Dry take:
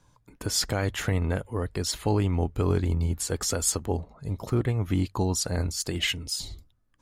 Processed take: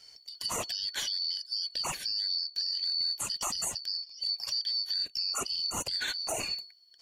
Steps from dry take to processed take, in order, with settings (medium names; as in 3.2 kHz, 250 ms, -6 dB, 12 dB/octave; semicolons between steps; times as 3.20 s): four frequency bands reordered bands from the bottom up 4321; compression 5:1, threshold -36 dBFS, peak gain reduction 15 dB; peak limiter -30 dBFS, peak gain reduction 8 dB; trim +7.5 dB